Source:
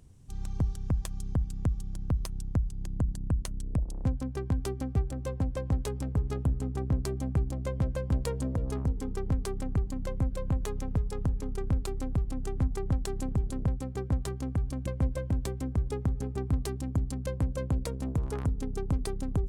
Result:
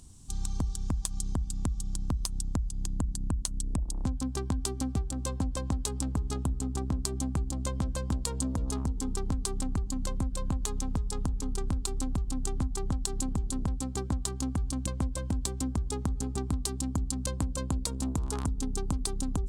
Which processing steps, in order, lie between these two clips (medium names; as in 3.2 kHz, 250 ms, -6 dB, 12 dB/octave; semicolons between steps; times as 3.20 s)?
graphic EQ 125/250/500/1000/2000/4000/8000 Hz -7/+3/-9/+4/-7/+6/+11 dB; compression 4:1, threshold -32 dBFS, peak gain reduction 8 dB; trim +5 dB